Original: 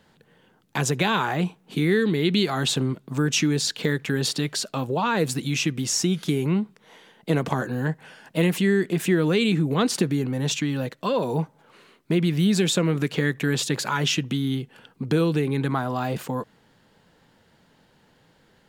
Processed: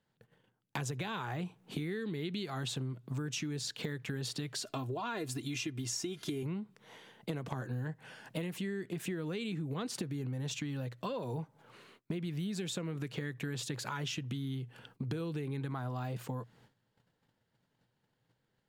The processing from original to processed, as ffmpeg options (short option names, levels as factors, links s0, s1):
-filter_complex "[0:a]asettb=1/sr,asplit=3[s0][s1][s2];[s0]atrim=end=4.634[s3];[s1]atrim=start=4.63:end=6.43,asetpts=PTS-STARTPTS,afade=t=in:d=0.004:c=qsin,afade=t=out:st=1.796:d=0.004:c=qsin,aecho=1:1:2.9:0.65,atrim=end_sample=79380[s4];[s2]atrim=start=6.426[s5];[s3][s4]acrossfade=d=0.004:c1=hsin:c2=qsin[s6];[s6][s5]acrossfade=d=0.004:c1=qsin:c2=hsin,agate=range=0.141:threshold=0.00158:ratio=16:detection=peak,equalizer=f=120:t=o:w=0.25:g=12,acompressor=threshold=0.0282:ratio=6,volume=0.596"